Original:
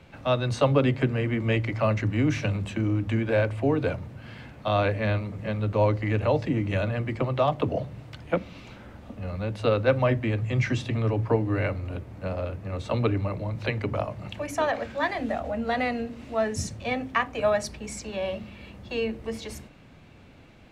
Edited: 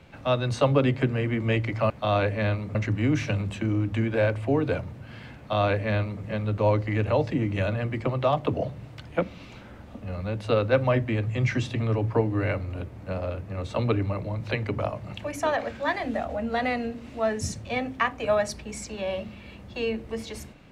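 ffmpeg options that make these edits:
-filter_complex "[0:a]asplit=3[a][b][c];[a]atrim=end=1.902[d];[b]atrim=start=4.528:end=5.382[e];[c]atrim=start=1.898[f];[d][e]acrossfade=d=0.004:c1=hsin:c2=hsin[g];[g][f]acrossfade=d=0.004:c1=hsin:c2=hsin"

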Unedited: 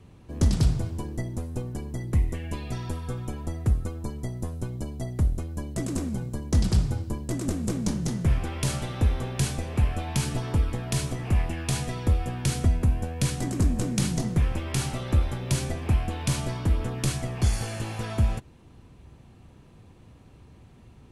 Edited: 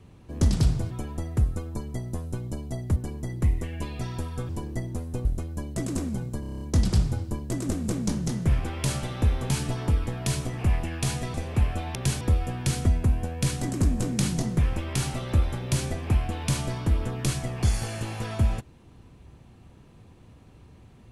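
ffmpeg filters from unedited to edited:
-filter_complex "[0:a]asplit=16[a][b][c][d][e][f][g][h][i][j][k][l][m][n][o][p];[a]atrim=end=0.912[q];[b]atrim=start=3.198:end=5.252[r];[c]atrim=start=1.668:end=3.202[s];[d]atrim=start=0.908:end=1.672[t];[e]atrim=start=5.248:end=6.432[u];[f]atrim=start=6.398:end=6.432[v];[g]atrim=start=6.398:end=6.432[w];[h]atrim=start=6.398:end=6.432[x];[i]atrim=start=6.398:end=6.432[y];[j]atrim=start=6.398:end=6.432[z];[k]atrim=start=6.398:end=6.432[aa];[l]atrim=start=6.398:end=9.292[ab];[m]atrim=start=10.158:end=12.002[ac];[n]atrim=start=9.548:end=10.162[ad];[o]atrim=start=9.288:end=9.552[ae];[p]atrim=start=11.998[af];[q][r]acrossfade=d=0.004:c1=hsin:c2=hsin[ag];[ag][s]acrossfade=d=0.004:c1=hsin:c2=hsin[ah];[ah][t]acrossfade=d=0.004:c1=hsin:c2=hsin[ai];[ai][u]acrossfade=d=0.004:c1=hsin:c2=hsin[aj];[aj][v]acrossfade=d=0.004:c1=hsin:c2=hsin[ak];[ak][w]acrossfade=d=0.004:c1=hsin:c2=hsin[al];[al][x]acrossfade=d=0.004:c1=hsin:c2=hsin[am];[am][y]acrossfade=d=0.004:c1=hsin:c2=hsin[an];[an][z]acrossfade=d=0.004:c1=hsin:c2=hsin[ao];[ao][aa]acrossfade=d=0.004:c1=hsin:c2=hsin[ap];[ap][ab]acrossfade=d=0.004:c1=hsin:c2=hsin[aq];[aq][ac]acrossfade=d=0.004:c1=hsin:c2=hsin[ar];[ar][ad]acrossfade=d=0.004:c1=hsin:c2=hsin[as];[as][ae]acrossfade=d=0.004:c1=hsin:c2=hsin[at];[at][af]acrossfade=d=0.004:c1=hsin:c2=hsin"

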